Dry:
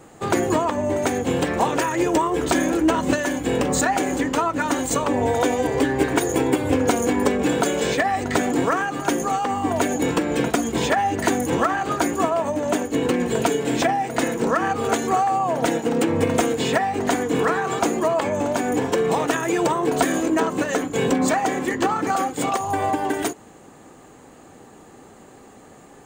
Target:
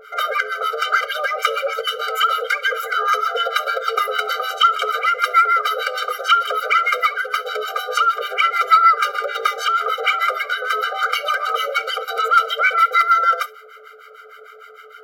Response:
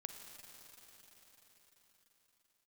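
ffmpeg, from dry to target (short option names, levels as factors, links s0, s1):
-filter_complex "[0:a]aemphasis=mode=reproduction:type=75fm,acrossover=split=3000[s0][s1];[s1]acompressor=threshold=0.0178:ratio=4:attack=1:release=60[s2];[s0][s2]amix=inputs=2:normalize=0,lowshelf=f=570:t=q:w=3:g=-8,acontrast=74,aeval=exprs='val(0)+0.0355*(sin(2*PI*50*n/s)+sin(2*PI*2*50*n/s)/2+sin(2*PI*3*50*n/s)/3+sin(2*PI*4*50*n/s)/4+sin(2*PI*5*50*n/s)/5)':c=same,acrossover=split=580[s3][s4];[s3]aeval=exprs='val(0)*(1-1/2+1/2*cos(2*PI*3.8*n/s))':c=same[s5];[s4]aeval=exprs='val(0)*(1-1/2-1/2*cos(2*PI*3.8*n/s))':c=same[s6];[s5][s6]amix=inputs=2:normalize=0,asplit=2[s7][s8];[1:a]atrim=start_sample=2205,atrim=end_sample=6174[s9];[s8][s9]afir=irnorm=-1:irlink=0,volume=1.06[s10];[s7][s10]amix=inputs=2:normalize=0,asetrate=76440,aresample=44100,afftfilt=real='re*eq(mod(floor(b*sr/1024/400),2),1)':imag='im*eq(mod(floor(b*sr/1024/400),2),1)':win_size=1024:overlap=0.75,volume=0.891"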